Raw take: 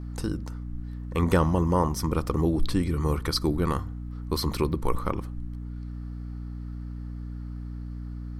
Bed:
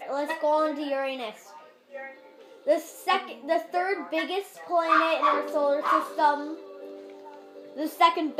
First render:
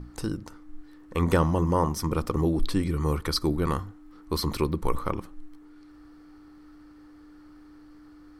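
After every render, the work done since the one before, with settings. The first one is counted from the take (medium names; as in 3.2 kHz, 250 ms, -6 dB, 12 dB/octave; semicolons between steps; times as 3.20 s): hum notches 60/120/180/240 Hz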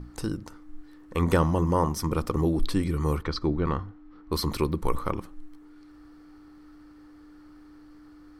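3.22–4.32 s: distance through air 190 m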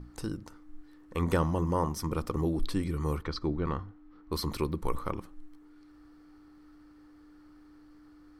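trim -5 dB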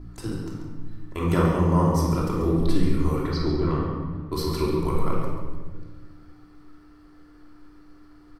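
delay 138 ms -10.5 dB; simulated room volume 1400 m³, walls mixed, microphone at 3 m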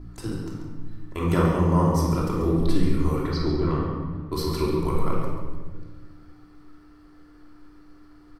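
no audible change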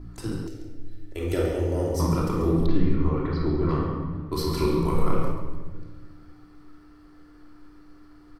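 0.47–2.00 s: static phaser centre 440 Hz, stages 4; 2.66–3.69 s: distance through air 290 m; 4.54–5.32 s: doubling 30 ms -5 dB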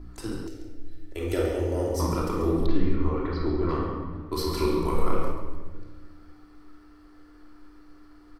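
peaking EQ 140 Hz -14 dB 0.64 oct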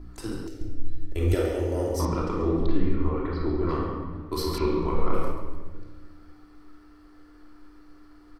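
0.61–1.35 s: tone controls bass +11 dB, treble 0 dB; 2.05–3.67 s: distance through air 110 m; 4.58–5.14 s: distance through air 160 m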